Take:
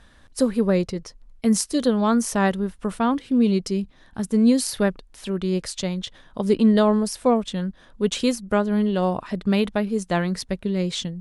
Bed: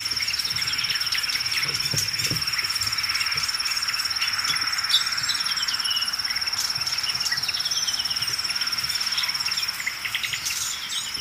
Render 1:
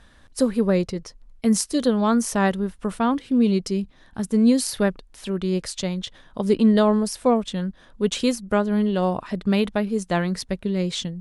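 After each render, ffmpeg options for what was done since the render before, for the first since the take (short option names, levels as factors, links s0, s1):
-af anull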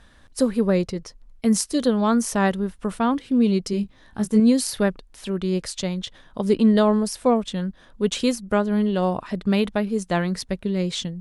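-filter_complex "[0:a]asettb=1/sr,asplit=3[s0][s1][s2];[s0]atrim=end=3.714[s3];[s1]atrim=start=3.71:end=4.4,asetpts=PTS-STARTPTS,afade=t=in:d=0.004:c=qsin,afade=t=out:st=0.686:d=0.004:c=qsin,asplit=2[s4][s5];[s5]adelay=19,volume=0.596[s6];[s4][s6]amix=inputs=2:normalize=0,atrim=end_sample=30429[s7];[s2]atrim=start=4.396[s8];[s3][s7]acrossfade=d=0.004:c1=hsin:c2=qsin[s9];[s9][s8]acrossfade=d=0.004:c1=qsin:c2=hsin"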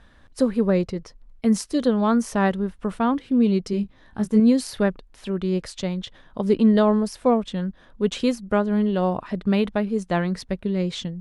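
-af "highshelf=f=5000:g=-11"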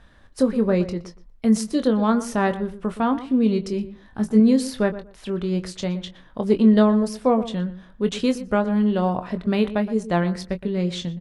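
-filter_complex "[0:a]asplit=2[s0][s1];[s1]adelay=23,volume=0.335[s2];[s0][s2]amix=inputs=2:normalize=0,asplit=2[s3][s4];[s4]adelay=119,lowpass=f=1800:p=1,volume=0.211,asplit=2[s5][s6];[s6]adelay=119,lowpass=f=1800:p=1,volume=0.19[s7];[s3][s5][s7]amix=inputs=3:normalize=0"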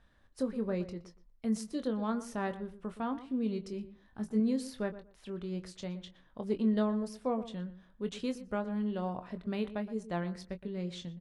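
-af "volume=0.2"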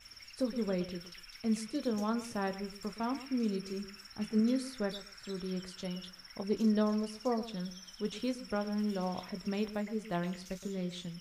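-filter_complex "[1:a]volume=0.0447[s0];[0:a][s0]amix=inputs=2:normalize=0"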